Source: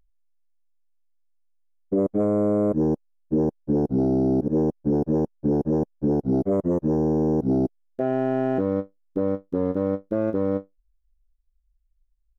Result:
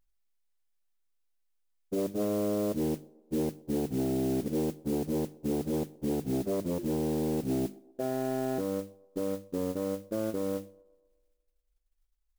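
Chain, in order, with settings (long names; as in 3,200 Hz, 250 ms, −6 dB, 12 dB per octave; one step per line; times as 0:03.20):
mains-hum notches 50/100/150/200/250/300/350 Hz
noise that follows the level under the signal 18 dB
delay with a band-pass on its return 125 ms, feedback 53%, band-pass 510 Hz, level −23 dB
level −8 dB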